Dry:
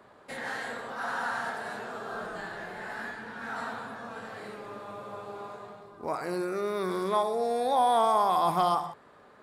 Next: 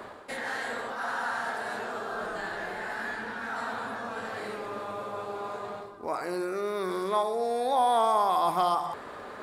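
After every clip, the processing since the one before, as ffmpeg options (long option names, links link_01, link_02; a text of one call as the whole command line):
ffmpeg -i in.wav -af "equalizer=frequency=150:width=1.8:gain=-7.5,areverse,acompressor=mode=upward:threshold=-28dB:ratio=2.5,areverse" out.wav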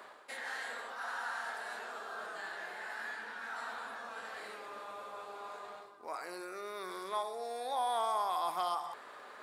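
ffmpeg -i in.wav -af "highpass=frequency=1100:poles=1,volume=-5dB" out.wav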